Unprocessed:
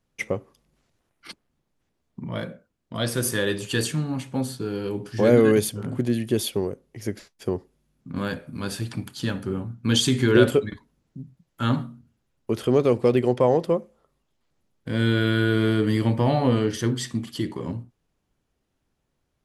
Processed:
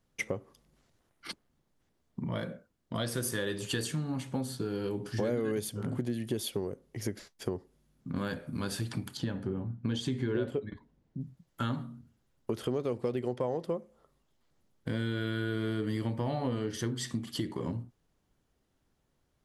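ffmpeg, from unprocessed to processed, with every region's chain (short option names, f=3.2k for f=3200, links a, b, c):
-filter_complex "[0:a]asettb=1/sr,asplit=3[a][b][c];[a]atrim=end=9.174[d];[b]atrim=start=9.17:end=11.21,asetpts=PTS-STARTPTS,afade=t=in:d=0.004:c=qsin,afade=t=out:st=2.036:d=0.004:c=qsin,lowpass=f=1.8k:p=1,equalizer=f=1.3k:w=4.7:g=-5.5[e];[c]atrim=start=11.206[f];[d][e]acrossfade=d=0.004:c1=hsin:c2=qsin[g];[g][f]acrossfade=d=0.004:c1=qsin:c2=hsin,equalizer=f=2.5k:w=5.9:g=-3.5,acompressor=threshold=-31dB:ratio=4"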